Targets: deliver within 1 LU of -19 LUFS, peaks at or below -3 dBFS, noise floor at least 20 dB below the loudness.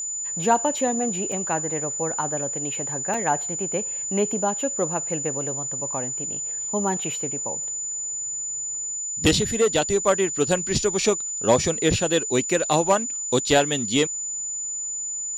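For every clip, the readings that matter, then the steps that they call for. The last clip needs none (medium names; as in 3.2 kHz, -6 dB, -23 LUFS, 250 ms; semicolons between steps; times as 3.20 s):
dropouts 2; longest dropout 3.2 ms; steady tone 7 kHz; tone level -27 dBFS; loudness -23.0 LUFS; peak level -6.0 dBFS; loudness target -19.0 LUFS
-> interpolate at 1.32/3.14 s, 3.2 ms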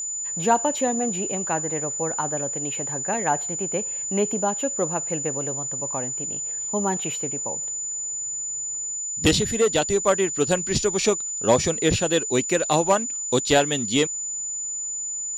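dropouts 0; steady tone 7 kHz; tone level -27 dBFS
-> band-stop 7 kHz, Q 30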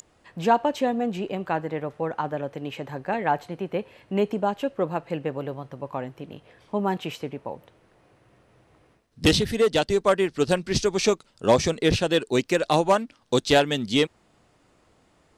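steady tone not found; loudness -25.0 LUFS; peak level -5.5 dBFS; loudness target -19.0 LUFS
-> trim +6 dB; peak limiter -3 dBFS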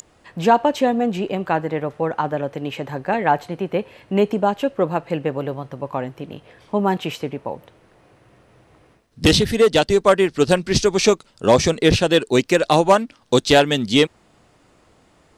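loudness -19.0 LUFS; peak level -3.0 dBFS; noise floor -57 dBFS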